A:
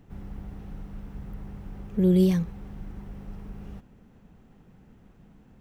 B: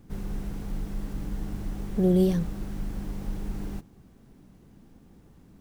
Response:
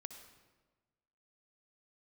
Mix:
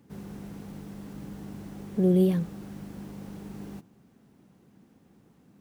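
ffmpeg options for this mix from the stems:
-filter_complex "[0:a]volume=0.376[s0];[1:a]volume=0.631[s1];[s0][s1]amix=inputs=2:normalize=0,highpass=130"

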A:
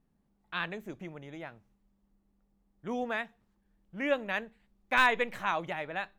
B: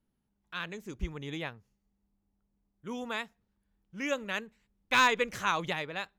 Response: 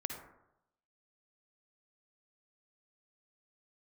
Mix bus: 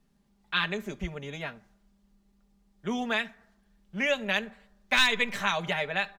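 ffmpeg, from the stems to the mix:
-filter_complex "[0:a]equalizer=f=4600:w=0.46:g=9.5,aecho=1:1:5:0.44,volume=1.19,asplit=2[s0][s1];[s1]volume=0.119[s2];[1:a]adelay=4.7,volume=0.708[s3];[2:a]atrim=start_sample=2205[s4];[s2][s4]afir=irnorm=-1:irlink=0[s5];[s0][s3][s5]amix=inputs=3:normalize=0,acrossover=split=180|3000[s6][s7][s8];[s7]acompressor=threshold=0.0631:ratio=6[s9];[s6][s9][s8]amix=inputs=3:normalize=0"

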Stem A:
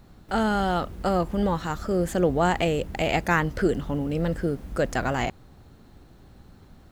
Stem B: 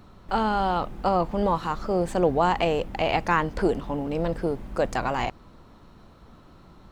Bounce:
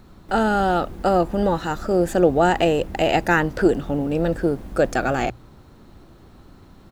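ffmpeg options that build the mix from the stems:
-filter_complex "[0:a]equalizer=f=340:t=o:w=0.36:g=5,bandreject=f=60:t=h:w=6,bandreject=f=120:t=h:w=6,volume=1.26[s0];[1:a]volume=-1,adelay=1.1,volume=0.75[s1];[s0][s1]amix=inputs=2:normalize=0"

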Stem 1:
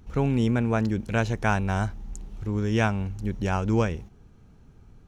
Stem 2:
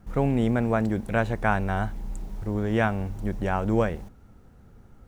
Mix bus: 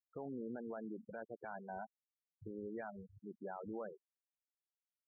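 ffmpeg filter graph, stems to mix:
-filter_complex "[0:a]equalizer=f=3900:w=0.49:g=-3.5,acrossover=split=540[s0][s1];[s0]aeval=exprs='val(0)*(1-0.5/2+0.5/2*cos(2*PI*5.7*n/s))':c=same[s2];[s1]aeval=exprs='val(0)*(1-0.5/2-0.5/2*cos(2*PI*5.7*n/s))':c=same[s3];[s2][s3]amix=inputs=2:normalize=0,volume=0.562[s4];[1:a]lowshelf=f=120:g=-4.5,volume=-1,volume=0.15,asplit=2[s5][s6];[s6]apad=whole_len=223863[s7];[s4][s7]sidechaincompress=threshold=0.00398:ratio=20:attack=6.9:release=198[s8];[s8][s5]amix=inputs=2:normalize=0,highpass=f=410:p=1,afftfilt=real='re*gte(hypot(re,im),0.0158)':imag='im*gte(hypot(re,im),0.0158)':win_size=1024:overlap=0.75,alimiter=level_in=4.22:limit=0.0631:level=0:latency=1:release=10,volume=0.237"

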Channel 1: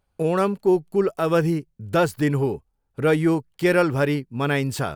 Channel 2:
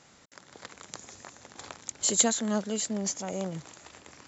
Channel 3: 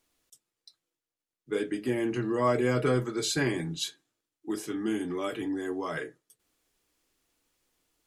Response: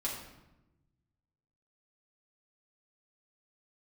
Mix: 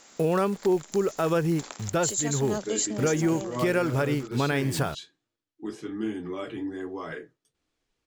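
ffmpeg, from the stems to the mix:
-filter_complex "[0:a]acrusher=bits=8:dc=4:mix=0:aa=0.000001,volume=1.33[s0];[1:a]highpass=f=220:w=0.5412,highpass=f=220:w=1.3066,highshelf=f=6200:g=9.5,volume=1.33[s1];[2:a]lowpass=5700,lowshelf=f=210:g=6,flanger=delay=7.8:depth=6.8:regen=-49:speed=1.2:shape=triangular,adelay=1150,volume=1.12[s2];[s0][s1][s2]amix=inputs=3:normalize=0,alimiter=limit=0.168:level=0:latency=1:release=427"

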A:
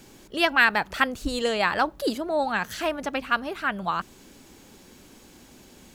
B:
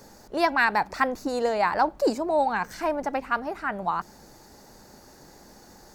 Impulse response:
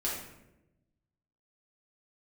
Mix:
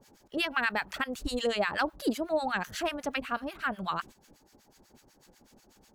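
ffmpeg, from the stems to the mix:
-filter_complex "[0:a]volume=1.12[s0];[1:a]acompressor=threshold=0.0158:ratio=2.5,volume=-1,volume=0.355,asplit=2[s1][s2];[s2]apad=whole_len=262294[s3];[s0][s3]sidechaingate=range=0.178:threshold=0.00141:ratio=16:detection=peak[s4];[s4][s1]amix=inputs=2:normalize=0,acrossover=split=1000[s5][s6];[s5]aeval=exprs='val(0)*(1-1/2+1/2*cos(2*PI*8.1*n/s))':c=same[s7];[s6]aeval=exprs='val(0)*(1-1/2-1/2*cos(2*PI*8.1*n/s))':c=same[s8];[s7][s8]amix=inputs=2:normalize=0,alimiter=limit=0.141:level=0:latency=1:release=120"

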